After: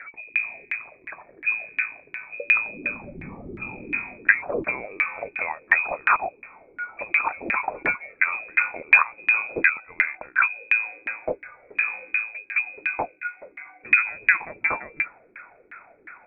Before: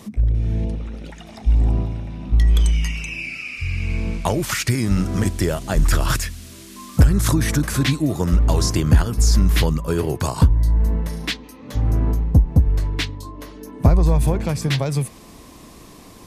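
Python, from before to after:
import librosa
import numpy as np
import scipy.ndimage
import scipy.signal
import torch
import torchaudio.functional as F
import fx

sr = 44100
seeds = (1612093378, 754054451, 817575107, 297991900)

y = fx.freq_invert(x, sr, carrier_hz=2500)
y = fx.filter_lfo_lowpass(y, sr, shape='saw_down', hz=2.8, low_hz=300.0, high_hz=1800.0, q=5.7)
y = fx.low_shelf(y, sr, hz=230.0, db=-9.0)
y = y * 10.0 ** (-1.5 / 20.0)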